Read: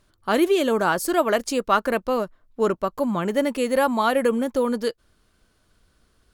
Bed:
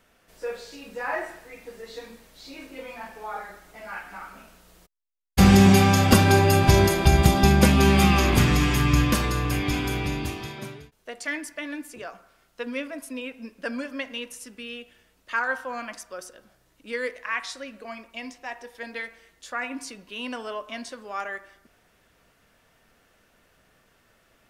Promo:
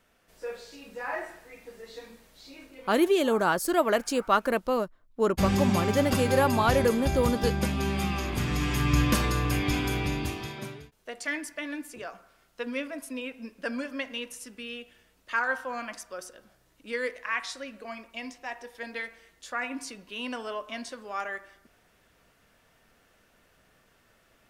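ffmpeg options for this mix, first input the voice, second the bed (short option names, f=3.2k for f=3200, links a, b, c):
-filter_complex "[0:a]adelay=2600,volume=-3.5dB[a];[1:a]volume=5dB,afade=t=out:st=2.37:d=0.56:silence=0.473151,afade=t=in:st=8.38:d=0.81:silence=0.334965[b];[a][b]amix=inputs=2:normalize=0"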